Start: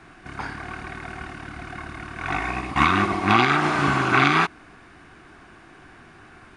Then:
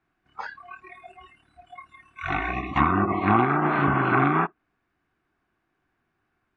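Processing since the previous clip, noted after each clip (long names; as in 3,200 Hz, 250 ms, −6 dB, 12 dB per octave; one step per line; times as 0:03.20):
treble cut that deepens with the level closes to 1,200 Hz, closed at −15.5 dBFS
noise reduction from a noise print of the clip's start 27 dB
high-shelf EQ 6,100 Hz −8 dB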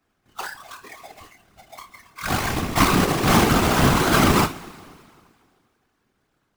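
each half-wave held at its own peak
coupled-rooms reverb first 0.29 s, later 2.1 s, from −18 dB, DRR 5.5 dB
random phases in short frames
level −1 dB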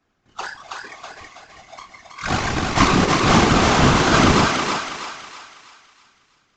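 feedback echo with a high-pass in the loop 324 ms, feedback 45%, high-pass 630 Hz, level −3 dB
downsampling to 16,000 Hz
level +2 dB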